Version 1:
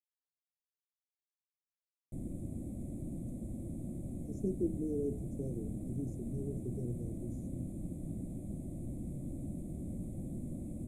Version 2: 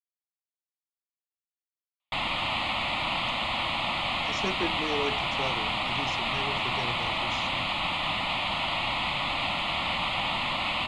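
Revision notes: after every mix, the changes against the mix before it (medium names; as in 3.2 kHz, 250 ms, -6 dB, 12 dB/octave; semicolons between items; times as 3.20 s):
master: remove inverse Chebyshev band-stop 870–4700 Hz, stop band 50 dB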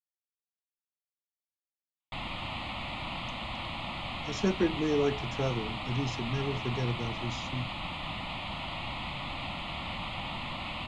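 background -10.0 dB; master: add bass shelf 310 Hz +11 dB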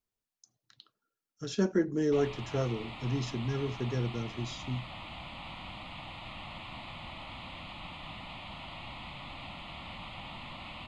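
speech: entry -2.85 s; background -7.0 dB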